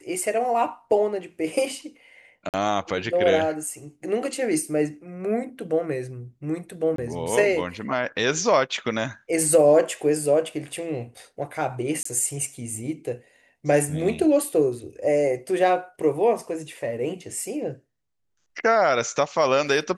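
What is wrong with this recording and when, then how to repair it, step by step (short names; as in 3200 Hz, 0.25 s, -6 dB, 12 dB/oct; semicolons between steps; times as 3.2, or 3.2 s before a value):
2.49–2.54 gap 48 ms
6.96–6.98 gap 23 ms
12.03–12.05 gap 24 ms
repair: interpolate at 2.49, 48 ms; interpolate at 6.96, 23 ms; interpolate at 12.03, 24 ms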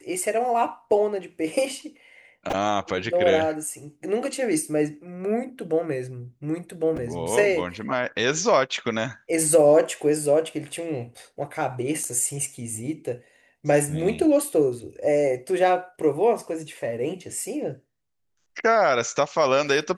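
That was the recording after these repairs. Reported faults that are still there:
none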